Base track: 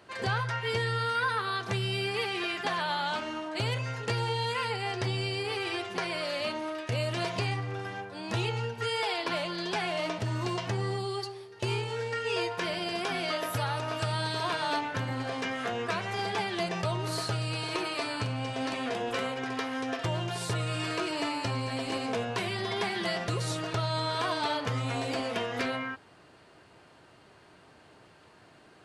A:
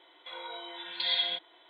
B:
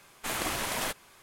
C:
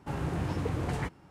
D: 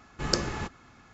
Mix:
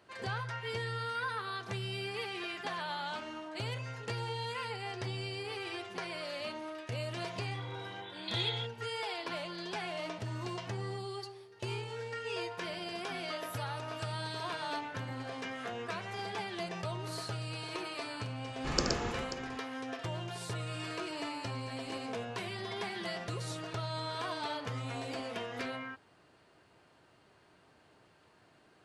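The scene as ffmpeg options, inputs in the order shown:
ffmpeg -i bed.wav -i cue0.wav -i cue1.wav -i cue2.wav -i cue3.wav -filter_complex "[0:a]volume=-7.5dB[link_01];[4:a]aecho=1:1:74|120|535:0.335|0.631|0.224[link_02];[1:a]atrim=end=1.69,asetpts=PTS-STARTPTS,volume=-7dB,afade=type=in:duration=0.004:curve=hsin,afade=type=out:start_time=1.686:duration=0.004:curve=hsin,adelay=7280[link_03];[link_02]atrim=end=1.13,asetpts=PTS-STARTPTS,volume=-5dB,afade=type=in:duration=0.004:curve=hsin,afade=type=out:start_time=1.126:duration=0.004:curve=hsin,adelay=18450[link_04];[link_01][link_03][link_04]amix=inputs=3:normalize=0" out.wav

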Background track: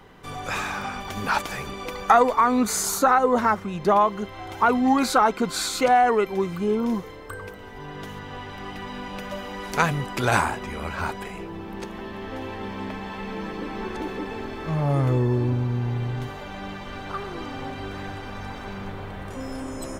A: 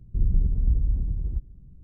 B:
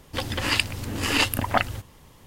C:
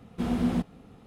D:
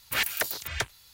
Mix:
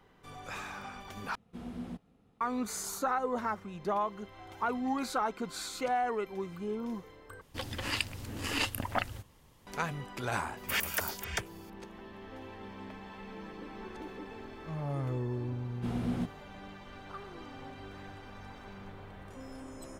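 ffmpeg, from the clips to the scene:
ffmpeg -i bed.wav -i cue0.wav -i cue1.wav -i cue2.wav -i cue3.wav -filter_complex "[3:a]asplit=2[link_01][link_02];[0:a]volume=-13dB[link_03];[4:a]bandreject=frequency=4000:width=6[link_04];[link_03]asplit=3[link_05][link_06][link_07];[link_05]atrim=end=1.354[link_08];[link_01]atrim=end=1.06,asetpts=PTS-STARTPTS,volume=-15dB[link_09];[link_06]atrim=start=2.406:end=7.414[link_10];[2:a]atrim=end=2.26,asetpts=PTS-STARTPTS,volume=-10dB[link_11];[link_07]atrim=start=9.666[link_12];[link_04]atrim=end=1.13,asetpts=PTS-STARTPTS,volume=-4.5dB,afade=type=in:duration=0.004:curve=hsin,afade=type=out:start_time=1.126:duration=0.004:curve=hsin,adelay=10570[link_13];[link_02]atrim=end=1.06,asetpts=PTS-STARTPTS,volume=-7.5dB,afade=type=in:duration=0.004:curve=hsin,afade=type=out:start_time=1.056:duration=0.004:curve=hsin,adelay=15640[link_14];[link_08][link_09]acrossfade=duration=0.004:curve1=hsin:curve2=hsin[link_15];[link_15][link_10]acrossfade=duration=0.004:curve1=hsin:curve2=hsin[link_16];[link_16][link_11]acrossfade=duration=0.004:curve1=hsin:curve2=hsin[link_17];[link_17][link_12]acrossfade=duration=0.004:curve1=hsin:curve2=hsin[link_18];[link_18][link_13][link_14]amix=inputs=3:normalize=0" out.wav

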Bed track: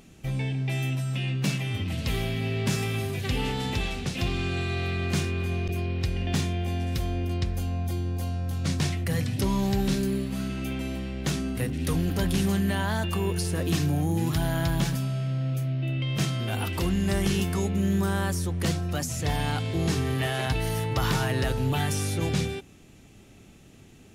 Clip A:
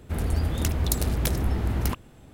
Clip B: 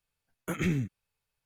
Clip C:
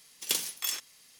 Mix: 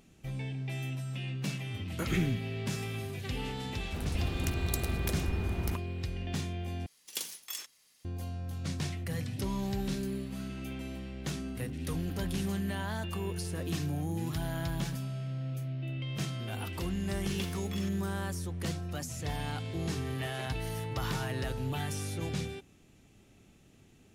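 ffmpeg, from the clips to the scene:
ffmpeg -i bed.wav -i cue0.wav -i cue1.wav -i cue2.wav -filter_complex "[3:a]asplit=2[link_01][link_02];[0:a]volume=-8.5dB[link_03];[link_02]acrossover=split=3800[link_04][link_05];[link_05]acompressor=threshold=-46dB:ratio=4:attack=1:release=60[link_06];[link_04][link_06]amix=inputs=2:normalize=0[link_07];[link_03]asplit=2[link_08][link_09];[link_08]atrim=end=6.864[link_10];[link_01]atrim=end=1.19,asetpts=PTS-STARTPTS,volume=-8dB[link_11];[link_09]atrim=start=8.046[link_12];[2:a]atrim=end=1.45,asetpts=PTS-STARTPTS,volume=-2dB,afade=type=in:duration=0.004:curve=hsin,afade=type=out:start_time=1.446:duration=0.004:curve=hsin,adelay=1510[link_13];[1:a]atrim=end=2.33,asetpts=PTS-STARTPTS,volume=-8.5dB,afade=type=in:duration=0.004:curve=hsin,afade=type=out:start_time=2.326:duration=0.004:curve=hsin,adelay=3820[link_14];[link_07]atrim=end=1.19,asetpts=PTS-STARTPTS,volume=-6.5dB,afade=type=in:duration=0.004:curve=hsin,afade=type=out:start_time=1.186:duration=0.004:curve=hsin,adelay=17090[link_15];[link_10][link_11]acrossfade=duration=0.004:curve1=hsin:curve2=hsin[link_16];[link_16][link_12]acrossfade=duration=0.004:curve1=hsin:curve2=hsin[link_17];[link_17][link_13][link_14][link_15]amix=inputs=4:normalize=0" out.wav

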